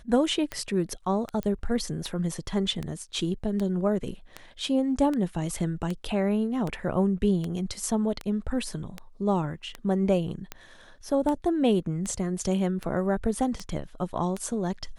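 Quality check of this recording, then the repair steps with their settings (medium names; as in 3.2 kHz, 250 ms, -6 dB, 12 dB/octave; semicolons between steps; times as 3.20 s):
tick 78 rpm -18 dBFS
1.43 s: pop -19 dBFS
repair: de-click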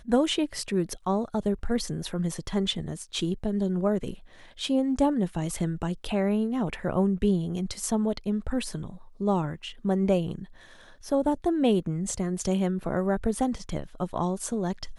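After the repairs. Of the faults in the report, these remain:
nothing left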